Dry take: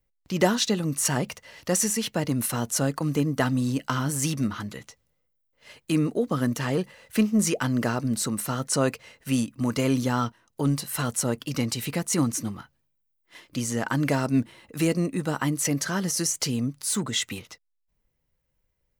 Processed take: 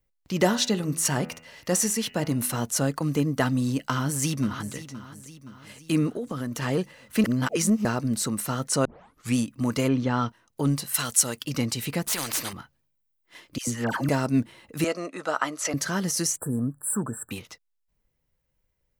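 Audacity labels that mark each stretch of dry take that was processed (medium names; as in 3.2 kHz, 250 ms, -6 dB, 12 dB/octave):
0.430000	2.650000	de-hum 82.11 Hz, notches 36
3.900000	4.740000	echo throw 520 ms, feedback 55%, level -14 dB
6.130000	6.620000	compression, threshold -27 dBFS
7.240000	7.850000	reverse
8.850000	8.850000	tape start 0.51 s
9.870000	10.270000	low-pass 2.1 kHz -> 5.2 kHz
10.940000	11.450000	tilt shelf lows -8 dB, about 1.4 kHz
12.070000	12.530000	spectrum-flattening compressor 4:1
13.580000	14.090000	phase dispersion lows, late by 96 ms, half as late at 960 Hz
14.840000	15.740000	cabinet simulation 470–10000 Hz, peaks and dips at 640 Hz +8 dB, 1.3 kHz +9 dB, 9 kHz -10 dB
16.370000	17.310000	brick-wall FIR band-stop 1.8–7.5 kHz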